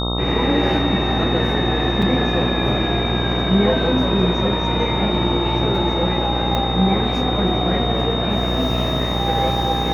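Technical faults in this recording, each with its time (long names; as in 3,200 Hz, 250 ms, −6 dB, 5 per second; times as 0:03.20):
mains buzz 60 Hz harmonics 22 −23 dBFS
whistle 3,700 Hz −25 dBFS
0:02.02: drop-out 4.2 ms
0:06.55: click −9 dBFS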